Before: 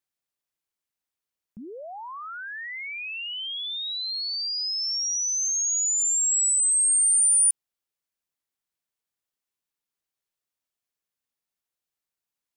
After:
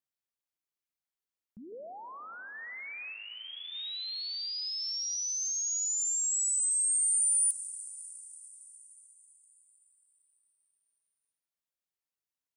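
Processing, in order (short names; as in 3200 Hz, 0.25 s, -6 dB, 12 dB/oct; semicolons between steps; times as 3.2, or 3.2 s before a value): 1.72–2.55 RIAA curve playback; reverb RT60 5.5 s, pre-delay 5 ms, DRR 12 dB; 3.12–3.73 detuned doubles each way 46 cents -> 30 cents; gain -7.5 dB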